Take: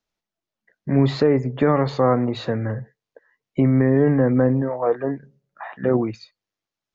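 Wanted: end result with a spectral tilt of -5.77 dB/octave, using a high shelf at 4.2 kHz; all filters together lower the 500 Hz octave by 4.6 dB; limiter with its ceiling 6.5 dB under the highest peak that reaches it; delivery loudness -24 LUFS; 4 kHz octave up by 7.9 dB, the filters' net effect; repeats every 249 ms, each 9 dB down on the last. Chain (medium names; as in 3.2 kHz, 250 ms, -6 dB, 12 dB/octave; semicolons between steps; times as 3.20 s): peaking EQ 500 Hz -5.5 dB; peaking EQ 4 kHz +6.5 dB; treble shelf 4.2 kHz +4 dB; peak limiter -14.5 dBFS; feedback delay 249 ms, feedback 35%, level -9 dB; trim +0.5 dB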